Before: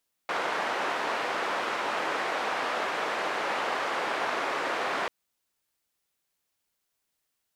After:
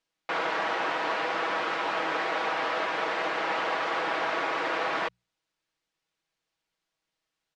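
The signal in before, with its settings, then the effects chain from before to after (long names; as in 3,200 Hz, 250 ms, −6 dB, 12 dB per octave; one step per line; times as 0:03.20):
band-limited noise 440–1,400 Hz, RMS −30 dBFS 4.79 s
low-pass filter 4,900 Hz 12 dB per octave
mains-hum notches 60/120/180 Hz
comb filter 6.2 ms, depth 51%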